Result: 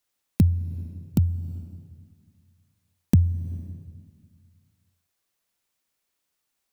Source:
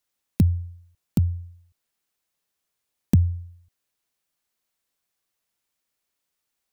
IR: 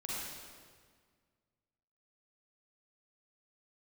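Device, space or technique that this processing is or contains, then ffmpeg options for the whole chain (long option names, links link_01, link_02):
ducked reverb: -filter_complex "[0:a]asplit=3[link_01][link_02][link_03];[1:a]atrim=start_sample=2205[link_04];[link_02][link_04]afir=irnorm=-1:irlink=0[link_05];[link_03]apad=whole_len=296510[link_06];[link_05][link_06]sidechaincompress=threshold=-42dB:ratio=3:attack=16:release=128,volume=-10dB[link_07];[link_01][link_07]amix=inputs=2:normalize=0"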